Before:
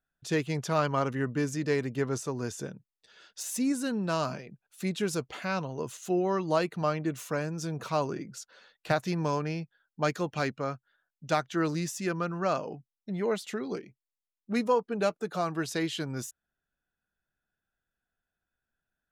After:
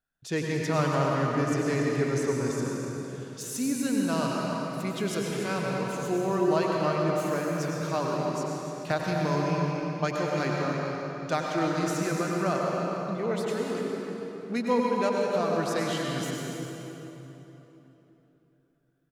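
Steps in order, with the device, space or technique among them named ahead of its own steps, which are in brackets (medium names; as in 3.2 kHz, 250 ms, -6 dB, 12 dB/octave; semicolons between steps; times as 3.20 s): cave (delay 289 ms -11 dB; reverberation RT60 3.5 s, pre-delay 88 ms, DRR -2 dB); trim -1.5 dB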